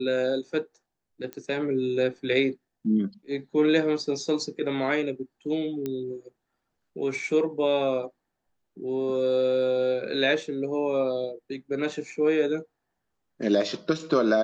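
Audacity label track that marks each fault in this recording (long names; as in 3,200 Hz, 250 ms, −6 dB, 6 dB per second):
1.330000	1.330000	click −21 dBFS
5.860000	5.860000	click −18 dBFS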